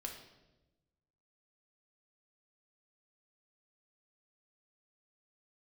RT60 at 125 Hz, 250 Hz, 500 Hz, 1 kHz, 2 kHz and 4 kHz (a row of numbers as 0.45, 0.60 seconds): 1.6, 1.4, 1.2, 0.90, 0.85, 0.85 seconds